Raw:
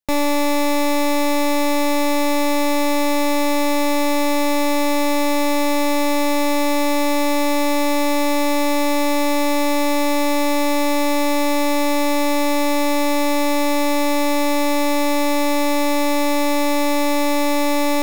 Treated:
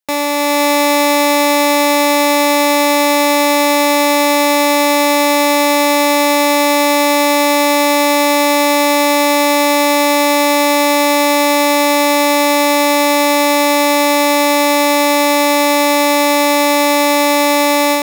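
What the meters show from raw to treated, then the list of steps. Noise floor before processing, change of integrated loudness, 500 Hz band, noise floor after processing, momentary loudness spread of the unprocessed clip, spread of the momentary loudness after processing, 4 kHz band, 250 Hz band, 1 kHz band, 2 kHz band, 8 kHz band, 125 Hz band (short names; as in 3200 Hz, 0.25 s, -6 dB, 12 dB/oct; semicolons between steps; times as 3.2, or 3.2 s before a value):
-17 dBFS, +7.5 dB, +7.5 dB, -12 dBFS, 0 LU, 0 LU, +9.5 dB, +3.5 dB, +8.5 dB, +9.5 dB, +10.0 dB, n/a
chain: HPF 510 Hz 6 dB/oct; AGC gain up to 5 dB; gain +5 dB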